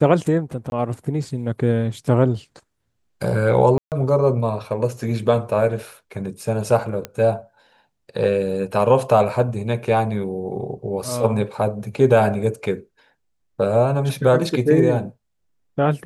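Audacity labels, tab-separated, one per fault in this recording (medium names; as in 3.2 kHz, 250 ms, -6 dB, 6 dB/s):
0.700000	0.720000	dropout 21 ms
3.780000	3.920000	dropout 138 ms
7.050000	7.050000	pop -13 dBFS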